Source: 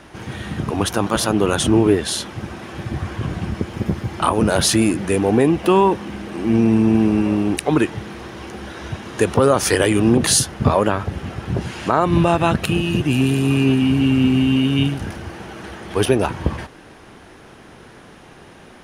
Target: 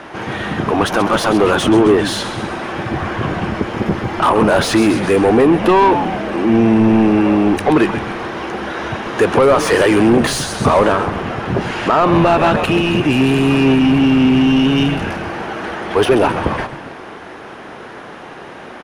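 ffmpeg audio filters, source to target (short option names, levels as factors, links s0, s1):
-filter_complex "[0:a]asplit=6[s0][s1][s2][s3][s4][s5];[s1]adelay=132,afreqshift=-110,volume=0.224[s6];[s2]adelay=264,afreqshift=-220,volume=0.119[s7];[s3]adelay=396,afreqshift=-330,volume=0.0631[s8];[s4]adelay=528,afreqshift=-440,volume=0.0335[s9];[s5]adelay=660,afreqshift=-550,volume=0.0176[s10];[s0][s6][s7][s8][s9][s10]amix=inputs=6:normalize=0,asplit=2[s11][s12];[s12]highpass=f=720:p=1,volume=12.6,asoftclip=type=tanh:threshold=0.841[s13];[s11][s13]amix=inputs=2:normalize=0,lowpass=f=1200:p=1,volume=0.501"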